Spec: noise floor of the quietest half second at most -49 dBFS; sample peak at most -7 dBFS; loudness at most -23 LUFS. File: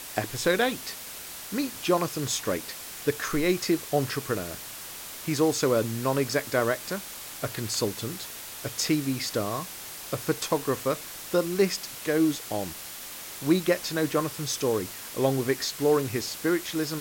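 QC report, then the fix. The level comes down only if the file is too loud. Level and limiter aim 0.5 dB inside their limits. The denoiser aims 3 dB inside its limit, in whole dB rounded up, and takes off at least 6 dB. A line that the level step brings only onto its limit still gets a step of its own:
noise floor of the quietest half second -40 dBFS: fail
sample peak -10.5 dBFS: OK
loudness -28.0 LUFS: OK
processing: denoiser 12 dB, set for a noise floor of -40 dBFS

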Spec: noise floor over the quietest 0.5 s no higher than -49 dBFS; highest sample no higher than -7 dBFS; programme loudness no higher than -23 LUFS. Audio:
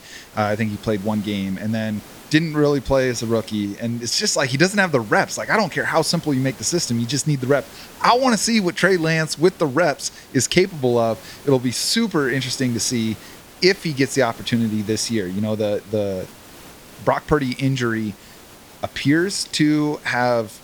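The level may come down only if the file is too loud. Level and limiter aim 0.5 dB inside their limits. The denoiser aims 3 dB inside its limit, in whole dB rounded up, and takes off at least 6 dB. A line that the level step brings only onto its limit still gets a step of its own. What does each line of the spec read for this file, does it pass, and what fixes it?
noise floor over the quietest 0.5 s -44 dBFS: fail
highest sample -1.5 dBFS: fail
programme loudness -20.0 LUFS: fail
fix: denoiser 6 dB, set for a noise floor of -44 dBFS; gain -3.5 dB; limiter -7.5 dBFS

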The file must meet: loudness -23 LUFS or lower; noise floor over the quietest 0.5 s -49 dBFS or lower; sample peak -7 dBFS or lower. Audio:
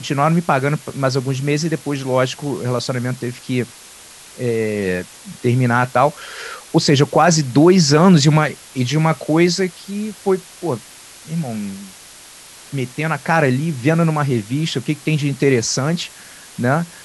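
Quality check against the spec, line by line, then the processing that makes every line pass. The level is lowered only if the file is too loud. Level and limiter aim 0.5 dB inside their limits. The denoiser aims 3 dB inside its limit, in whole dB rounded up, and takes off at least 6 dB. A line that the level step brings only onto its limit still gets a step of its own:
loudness -17.5 LUFS: fail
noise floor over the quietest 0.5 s -41 dBFS: fail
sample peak -1.5 dBFS: fail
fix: denoiser 6 dB, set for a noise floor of -41 dBFS; gain -6 dB

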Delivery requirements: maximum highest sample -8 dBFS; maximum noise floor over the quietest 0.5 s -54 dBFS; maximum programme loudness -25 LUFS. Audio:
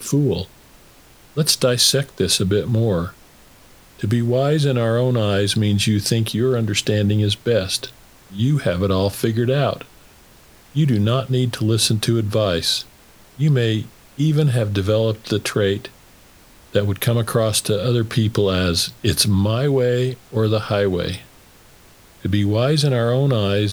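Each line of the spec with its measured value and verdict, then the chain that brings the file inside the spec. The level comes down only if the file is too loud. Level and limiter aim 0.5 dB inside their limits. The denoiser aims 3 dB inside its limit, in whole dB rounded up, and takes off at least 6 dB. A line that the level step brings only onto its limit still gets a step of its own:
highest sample -2.5 dBFS: fail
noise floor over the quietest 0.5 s -48 dBFS: fail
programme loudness -19.0 LUFS: fail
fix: gain -6.5 dB

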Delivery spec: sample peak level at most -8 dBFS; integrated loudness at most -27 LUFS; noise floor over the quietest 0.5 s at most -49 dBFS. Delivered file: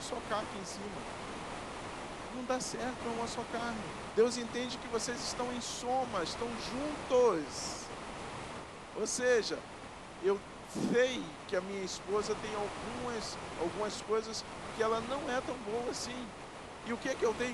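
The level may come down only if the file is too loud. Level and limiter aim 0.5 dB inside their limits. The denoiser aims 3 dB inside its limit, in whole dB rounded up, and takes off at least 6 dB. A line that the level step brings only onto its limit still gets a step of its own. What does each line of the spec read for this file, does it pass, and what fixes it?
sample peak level -17.5 dBFS: OK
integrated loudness -36.0 LUFS: OK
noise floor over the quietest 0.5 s -48 dBFS: fail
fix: denoiser 6 dB, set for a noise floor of -48 dBFS

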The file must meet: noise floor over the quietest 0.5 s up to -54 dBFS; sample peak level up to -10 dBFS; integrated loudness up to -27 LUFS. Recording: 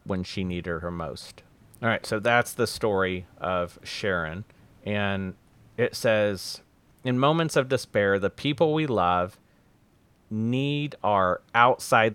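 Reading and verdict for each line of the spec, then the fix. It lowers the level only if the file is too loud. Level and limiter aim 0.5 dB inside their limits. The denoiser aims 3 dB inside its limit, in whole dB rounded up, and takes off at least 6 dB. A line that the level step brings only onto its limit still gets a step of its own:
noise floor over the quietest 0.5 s -61 dBFS: OK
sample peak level -3.0 dBFS: fail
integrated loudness -26.0 LUFS: fail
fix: gain -1.5 dB; limiter -10.5 dBFS

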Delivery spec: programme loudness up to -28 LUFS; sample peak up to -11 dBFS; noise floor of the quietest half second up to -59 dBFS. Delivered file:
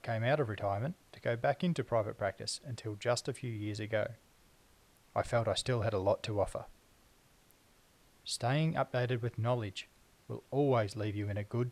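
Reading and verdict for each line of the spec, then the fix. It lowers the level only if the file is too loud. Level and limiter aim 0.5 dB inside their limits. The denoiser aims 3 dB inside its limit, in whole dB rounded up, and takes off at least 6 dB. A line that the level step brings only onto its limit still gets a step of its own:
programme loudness -35.0 LUFS: OK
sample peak -18.0 dBFS: OK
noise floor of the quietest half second -66 dBFS: OK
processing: none

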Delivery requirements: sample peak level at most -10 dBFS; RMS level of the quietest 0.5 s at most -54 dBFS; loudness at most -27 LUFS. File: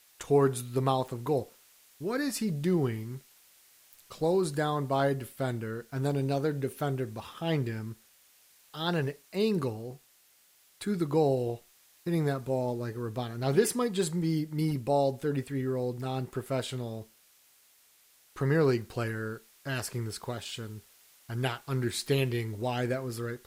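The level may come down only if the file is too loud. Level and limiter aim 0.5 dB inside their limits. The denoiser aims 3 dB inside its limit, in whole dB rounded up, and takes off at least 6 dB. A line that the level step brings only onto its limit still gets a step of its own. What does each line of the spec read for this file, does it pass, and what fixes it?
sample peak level -12.5 dBFS: OK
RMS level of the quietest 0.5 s -63 dBFS: OK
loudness -31.0 LUFS: OK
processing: none

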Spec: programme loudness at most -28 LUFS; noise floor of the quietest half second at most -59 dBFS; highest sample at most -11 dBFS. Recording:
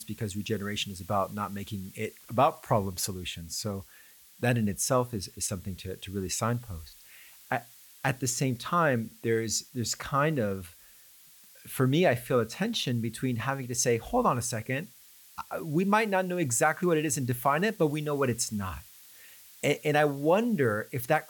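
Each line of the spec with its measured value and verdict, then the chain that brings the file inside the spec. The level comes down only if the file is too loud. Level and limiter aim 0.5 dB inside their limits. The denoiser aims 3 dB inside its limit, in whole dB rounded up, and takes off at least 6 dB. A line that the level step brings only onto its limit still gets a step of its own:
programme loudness -29.0 LUFS: OK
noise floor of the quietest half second -55 dBFS: fail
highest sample -10.0 dBFS: fail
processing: denoiser 7 dB, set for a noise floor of -55 dBFS; limiter -11.5 dBFS

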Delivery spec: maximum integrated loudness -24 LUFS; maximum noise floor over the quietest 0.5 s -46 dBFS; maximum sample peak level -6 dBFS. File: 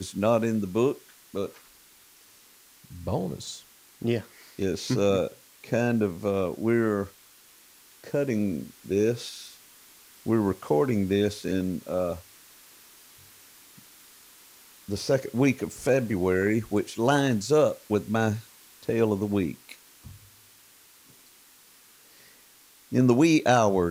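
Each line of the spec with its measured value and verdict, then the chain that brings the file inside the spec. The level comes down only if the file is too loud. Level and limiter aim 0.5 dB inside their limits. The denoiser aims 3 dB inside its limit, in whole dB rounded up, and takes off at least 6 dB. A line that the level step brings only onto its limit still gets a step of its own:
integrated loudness -26.0 LUFS: OK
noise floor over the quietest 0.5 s -56 dBFS: OK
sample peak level -8.5 dBFS: OK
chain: none

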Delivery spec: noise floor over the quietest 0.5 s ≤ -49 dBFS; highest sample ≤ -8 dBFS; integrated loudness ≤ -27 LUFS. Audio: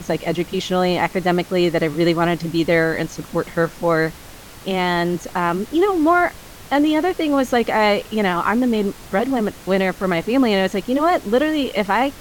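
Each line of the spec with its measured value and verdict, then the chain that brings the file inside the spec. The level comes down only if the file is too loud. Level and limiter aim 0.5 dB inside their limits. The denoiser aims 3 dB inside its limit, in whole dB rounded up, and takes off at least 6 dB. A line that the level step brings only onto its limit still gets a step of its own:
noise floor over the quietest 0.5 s -39 dBFS: fail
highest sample -5.0 dBFS: fail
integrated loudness -19.0 LUFS: fail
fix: denoiser 6 dB, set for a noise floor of -39 dBFS; gain -8.5 dB

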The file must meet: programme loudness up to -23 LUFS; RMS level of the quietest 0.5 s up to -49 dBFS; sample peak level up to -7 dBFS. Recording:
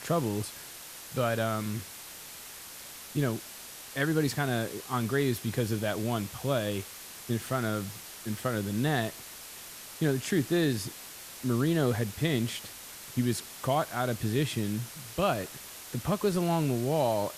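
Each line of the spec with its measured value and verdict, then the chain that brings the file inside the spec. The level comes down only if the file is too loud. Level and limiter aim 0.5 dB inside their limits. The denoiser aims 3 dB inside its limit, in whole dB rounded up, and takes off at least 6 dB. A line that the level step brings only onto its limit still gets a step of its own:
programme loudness -30.5 LUFS: OK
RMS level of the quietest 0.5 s -45 dBFS: fail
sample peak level -15.0 dBFS: OK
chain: denoiser 7 dB, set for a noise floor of -45 dBFS

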